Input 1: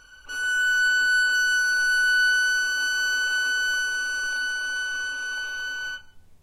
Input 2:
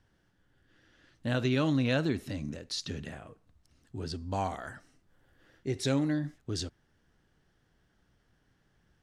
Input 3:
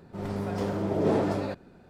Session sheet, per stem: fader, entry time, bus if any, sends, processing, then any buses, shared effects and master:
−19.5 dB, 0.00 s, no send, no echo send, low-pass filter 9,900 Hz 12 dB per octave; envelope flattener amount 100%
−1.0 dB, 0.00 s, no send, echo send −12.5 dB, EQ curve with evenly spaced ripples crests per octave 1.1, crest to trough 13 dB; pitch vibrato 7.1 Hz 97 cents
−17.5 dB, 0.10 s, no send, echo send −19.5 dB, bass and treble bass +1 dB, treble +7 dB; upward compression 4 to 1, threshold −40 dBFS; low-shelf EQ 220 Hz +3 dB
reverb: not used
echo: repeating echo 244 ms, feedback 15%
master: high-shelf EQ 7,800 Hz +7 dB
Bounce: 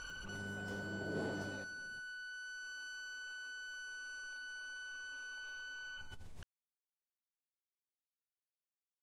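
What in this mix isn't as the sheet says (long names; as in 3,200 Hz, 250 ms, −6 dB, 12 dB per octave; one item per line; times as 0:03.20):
stem 1 −19.5 dB → −28.5 dB
stem 2: muted
master: missing high-shelf EQ 7,800 Hz +7 dB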